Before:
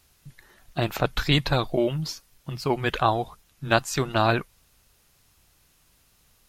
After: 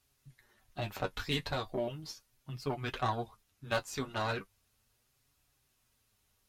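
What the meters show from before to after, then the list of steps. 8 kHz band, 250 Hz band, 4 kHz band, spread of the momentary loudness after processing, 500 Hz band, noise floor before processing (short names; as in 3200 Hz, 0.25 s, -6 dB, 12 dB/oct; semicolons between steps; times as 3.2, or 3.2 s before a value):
-11.5 dB, -13.5 dB, -11.5 dB, 13 LU, -11.5 dB, -63 dBFS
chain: added harmonics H 3 -23 dB, 8 -25 dB, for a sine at -4 dBFS; flange 0.37 Hz, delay 6.8 ms, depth 4.9 ms, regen +38%; notch comb 170 Hz; gain -5 dB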